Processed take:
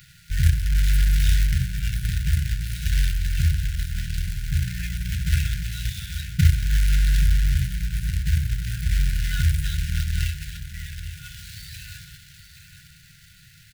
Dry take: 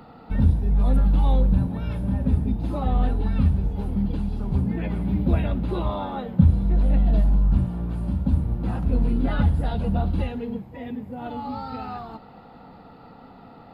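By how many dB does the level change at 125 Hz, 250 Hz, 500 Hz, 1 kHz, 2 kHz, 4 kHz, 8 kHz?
0.0 dB, −11.5 dB, below −40 dB, −16.5 dB, +9.5 dB, +13.0 dB, can't be measured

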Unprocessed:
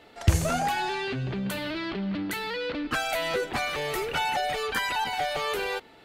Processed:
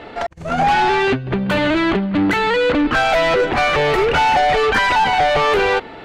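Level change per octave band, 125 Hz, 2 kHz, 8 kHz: +4.5, +12.5, +1.0 decibels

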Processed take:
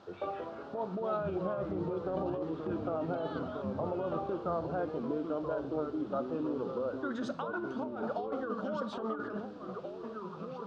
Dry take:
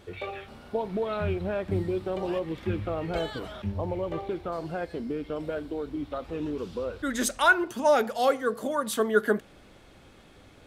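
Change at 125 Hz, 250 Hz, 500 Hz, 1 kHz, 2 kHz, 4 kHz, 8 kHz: −7.5 dB, −3.5 dB, −6.5 dB, −8.0 dB, −16.0 dB, −16.0 dB, below −25 dB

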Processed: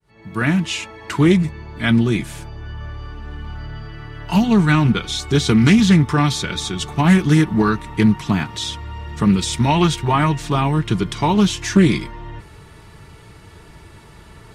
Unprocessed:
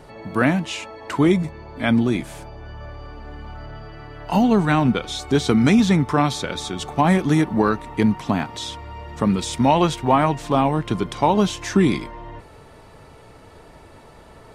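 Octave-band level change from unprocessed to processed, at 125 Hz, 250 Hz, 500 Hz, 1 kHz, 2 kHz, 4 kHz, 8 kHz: +6.0, +3.0, −1.5, −1.0, +3.5, +5.0, +5.0 decibels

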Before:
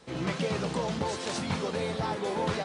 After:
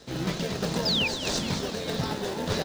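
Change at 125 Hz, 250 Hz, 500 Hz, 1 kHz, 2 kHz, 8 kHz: +2.0, +2.0, 0.0, −2.5, +3.5, +6.0 decibels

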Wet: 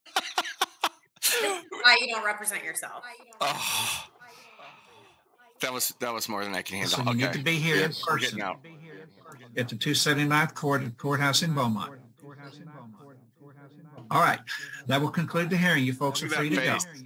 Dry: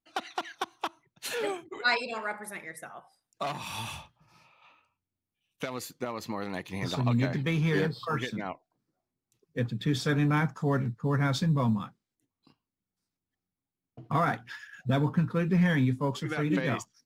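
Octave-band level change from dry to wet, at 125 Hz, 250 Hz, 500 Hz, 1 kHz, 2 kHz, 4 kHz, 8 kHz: −3.0, −1.0, +2.5, +5.5, +8.0, +11.5, +14.0 decibels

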